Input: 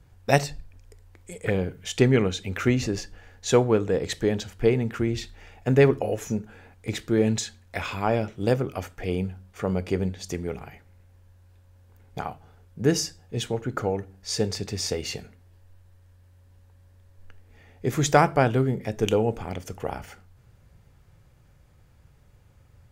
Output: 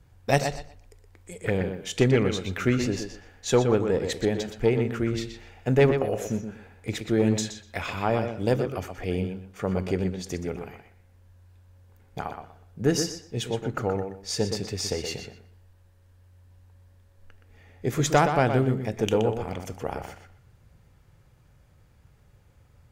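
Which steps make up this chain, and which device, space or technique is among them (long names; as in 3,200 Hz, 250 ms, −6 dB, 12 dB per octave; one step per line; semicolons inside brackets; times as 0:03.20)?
rockabilly slapback (tube saturation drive 9 dB, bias 0.4; tape delay 122 ms, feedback 23%, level −6 dB, low-pass 4,300 Hz)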